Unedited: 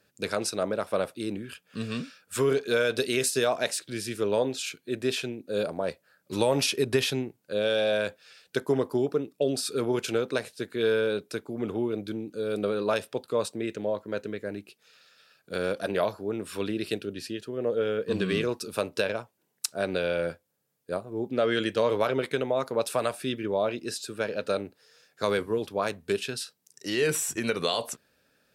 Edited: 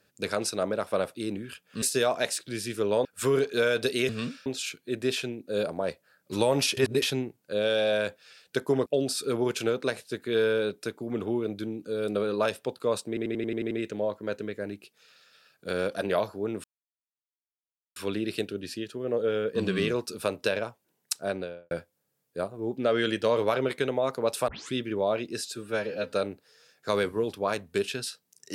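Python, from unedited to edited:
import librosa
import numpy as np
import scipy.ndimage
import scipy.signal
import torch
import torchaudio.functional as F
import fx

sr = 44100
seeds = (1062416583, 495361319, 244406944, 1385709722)

y = fx.studio_fade_out(x, sr, start_s=19.7, length_s=0.54)
y = fx.edit(y, sr, fx.swap(start_s=1.82, length_s=0.37, other_s=3.23, other_length_s=1.23),
    fx.reverse_span(start_s=6.77, length_s=0.25),
    fx.cut(start_s=8.86, length_s=0.48),
    fx.stutter(start_s=13.56, slice_s=0.09, count=8),
    fx.insert_silence(at_s=16.49, length_s=1.32),
    fx.tape_start(start_s=23.01, length_s=0.25),
    fx.stretch_span(start_s=24.08, length_s=0.38, factor=1.5), tone=tone)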